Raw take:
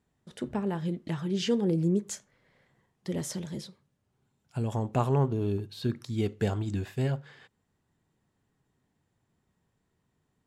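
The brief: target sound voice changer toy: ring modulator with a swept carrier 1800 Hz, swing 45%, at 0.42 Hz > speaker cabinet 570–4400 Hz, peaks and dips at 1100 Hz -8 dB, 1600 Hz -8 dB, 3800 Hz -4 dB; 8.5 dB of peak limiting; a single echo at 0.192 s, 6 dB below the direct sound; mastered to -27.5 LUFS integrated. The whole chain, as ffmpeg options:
-af "alimiter=limit=-23dB:level=0:latency=1,aecho=1:1:192:0.501,aeval=exprs='val(0)*sin(2*PI*1800*n/s+1800*0.45/0.42*sin(2*PI*0.42*n/s))':c=same,highpass=570,equalizer=f=1.1k:t=q:w=4:g=-8,equalizer=f=1.6k:t=q:w=4:g=-8,equalizer=f=3.8k:t=q:w=4:g=-4,lowpass=f=4.4k:w=0.5412,lowpass=f=4.4k:w=1.3066,volume=8.5dB"

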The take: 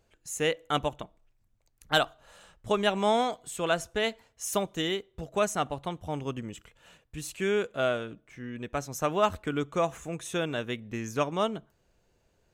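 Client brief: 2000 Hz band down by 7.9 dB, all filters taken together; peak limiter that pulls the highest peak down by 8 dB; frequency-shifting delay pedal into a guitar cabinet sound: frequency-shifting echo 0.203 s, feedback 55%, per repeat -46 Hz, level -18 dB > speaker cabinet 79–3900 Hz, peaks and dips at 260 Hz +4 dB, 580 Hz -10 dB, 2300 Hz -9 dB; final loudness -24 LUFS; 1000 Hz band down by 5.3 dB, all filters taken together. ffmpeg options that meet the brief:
-filter_complex "[0:a]equalizer=f=1k:t=o:g=-3.5,equalizer=f=2k:t=o:g=-7,alimiter=limit=-21dB:level=0:latency=1,asplit=6[a][b][c][d][e][f];[b]adelay=203,afreqshift=-46,volume=-18dB[g];[c]adelay=406,afreqshift=-92,volume=-23.2dB[h];[d]adelay=609,afreqshift=-138,volume=-28.4dB[i];[e]adelay=812,afreqshift=-184,volume=-33.6dB[j];[f]adelay=1015,afreqshift=-230,volume=-38.8dB[k];[a][g][h][i][j][k]amix=inputs=6:normalize=0,highpass=79,equalizer=f=260:t=q:w=4:g=4,equalizer=f=580:t=q:w=4:g=-10,equalizer=f=2.3k:t=q:w=4:g=-9,lowpass=f=3.9k:w=0.5412,lowpass=f=3.9k:w=1.3066,volume=12dB"

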